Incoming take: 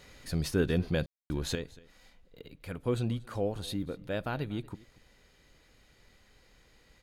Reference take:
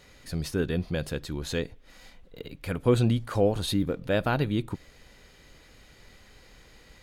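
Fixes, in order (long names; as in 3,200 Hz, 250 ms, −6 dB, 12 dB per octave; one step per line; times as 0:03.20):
ambience match 0:01.06–0:01.30
echo removal 237 ms −22 dB
level 0 dB, from 0:01.55 +8.5 dB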